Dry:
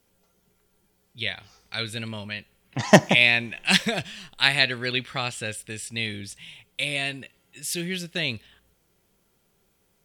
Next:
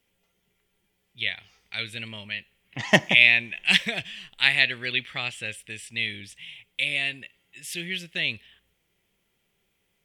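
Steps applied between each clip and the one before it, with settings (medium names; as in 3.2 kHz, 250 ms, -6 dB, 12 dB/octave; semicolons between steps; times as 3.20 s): high-order bell 2.5 kHz +9.5 dB 1.1 oct; trim -7 dB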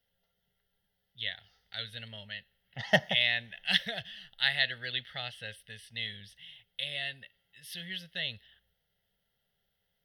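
static phaser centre 1.6 kHz, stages 8; trim -4 dB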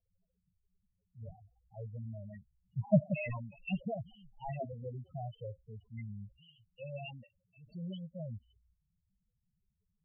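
median filter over 25 samples; loudest bins only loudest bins 4; trim +7.5 dB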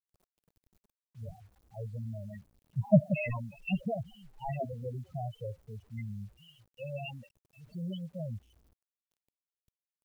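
word length cut 12-bit, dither none; trim +4 dB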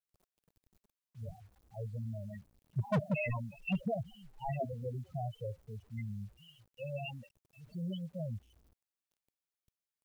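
hard clipper -25.5 dBFS, distortion -5 dB; trim -1 dB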